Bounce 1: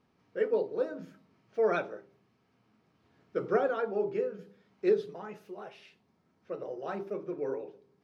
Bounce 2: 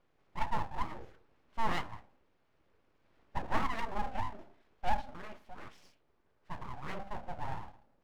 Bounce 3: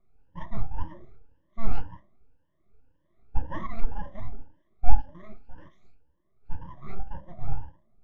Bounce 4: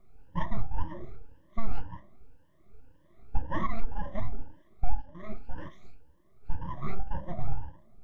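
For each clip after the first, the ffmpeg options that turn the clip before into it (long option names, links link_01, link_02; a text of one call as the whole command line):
ffmpeg -i in.wav -af "bass=frequency=250:gain=2,treble=frequency=4000:gain=-9,aeval=exprs='abs(val(0))':channel_layout=same,volume=-1.5dB" out.wav
ffmpeg -i in.wav -af "afftfilt=real='re*pow(10,22/40*sin(2*PI*(1.2*log(max(b,1)*sr/1024/100)/log(2)-(1.9)*(pts-256)/sr)))':imag='im*pow(10,22/40*sin(2*PI*(1.2*log(max(b,1)*sr/1024/100)/log(2)-(1.9)*(pts-256)/sr)))':win_size=1024:overlap=0.75,aemphasis=mode=reproduction:type=riaa,volume=-10dB" out.wav
ffmpeg -i in.wav -af "acompressor=threshold=-30dB:ratio=3,volume=9dB" out.wav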